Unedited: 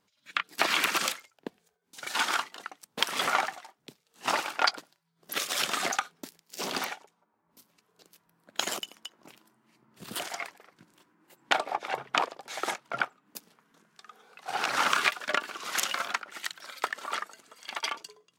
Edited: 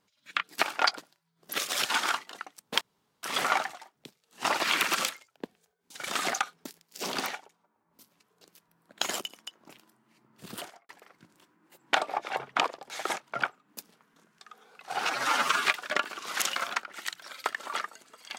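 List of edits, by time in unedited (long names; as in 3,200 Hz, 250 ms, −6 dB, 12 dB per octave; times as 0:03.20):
0:00.63–0:02.10: swap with 0:04.43–0:05.65
0:03.06: splice in room tone 0.42 s
0:10.03–0:10.47: fade out and dull
0:14.63–0:15.03: time-stretch 1.5×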